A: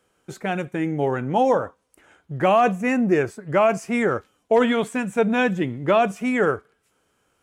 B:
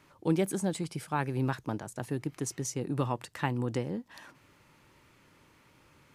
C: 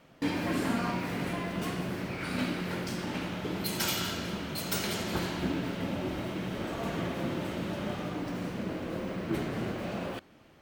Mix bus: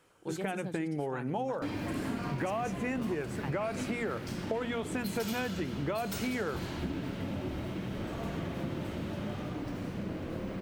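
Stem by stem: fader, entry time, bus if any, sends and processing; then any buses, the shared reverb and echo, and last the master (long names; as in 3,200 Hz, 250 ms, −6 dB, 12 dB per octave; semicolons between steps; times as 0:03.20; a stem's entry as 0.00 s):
−0.5 dB, 0.00 s, no send, downward compressor 2.5 to 1, threshold −27 dBFS, peak gain reduction 9.5 dB
−9.0 dB, 0.00 s, no send, no processing
−4.5 dB, 1.40 s, no send, low-shelf EQ 170 Hz +11 dB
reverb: not used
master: mains-hum notches 60/120/180/240 Hz; downward compressor 4 to 1, threshold −31 dBFS, peak gain reduction 8.5 dB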